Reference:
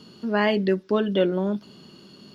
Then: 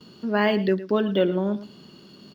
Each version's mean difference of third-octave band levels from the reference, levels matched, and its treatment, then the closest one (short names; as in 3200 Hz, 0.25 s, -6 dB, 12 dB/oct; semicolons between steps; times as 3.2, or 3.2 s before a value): 1.5 dB: gate with hold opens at -40 dBFS; echo 0.111 s -15.5 dB; decimation joined by straight lines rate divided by 2×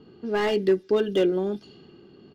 3.5 dB: low-pass opened by the level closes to 1400 Hz, open at -21.5 dBFS; bell 1100 Hz -6.5 dB 1.1 oct; comb 2.5 ms, depth 50%; slew limiter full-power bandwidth 95 Hz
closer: first